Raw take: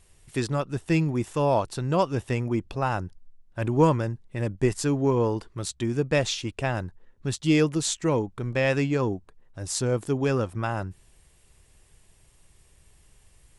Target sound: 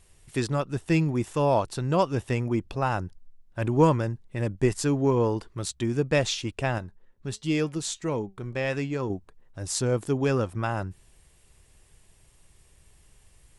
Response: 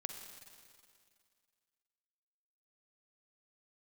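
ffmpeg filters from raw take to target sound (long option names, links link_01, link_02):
-filter_complex "[0:a]asettb=1/sr,asplit=3[link_01][link_02][link_03];[link_01]atrim=end=6.784[link_04];[link_02]atrim=start=6.78:end=9.1,asetpts=PTS-STARTPTS,afade=type=in:duration=0.004:curve=qsin,afade=type=out:start_time=2.316:duration=0.004:curve=qsin,flanger=delay=4.4:depth=1.2:regen=85:speed=1.5:shape=triangular[link_05];[link_03]atrim=start=9.096[link_06];[link_04][link_05]acrossfade=duration=0.004:curve1=hsin:curve2=qsin[link_07];[link_07][link_06]acrossfade=duration=0.004:curve1=qsin:curve2=hsin"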